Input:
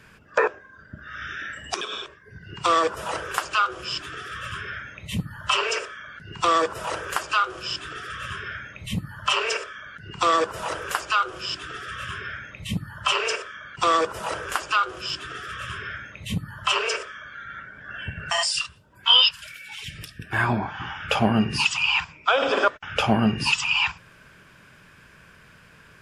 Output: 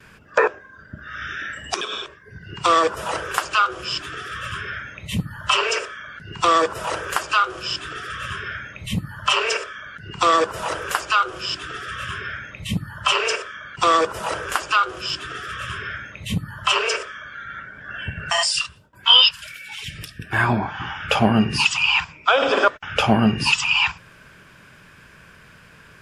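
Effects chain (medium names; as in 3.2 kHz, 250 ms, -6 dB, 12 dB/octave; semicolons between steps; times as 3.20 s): gate with hold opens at -47 dBFS; trim +3.5 dB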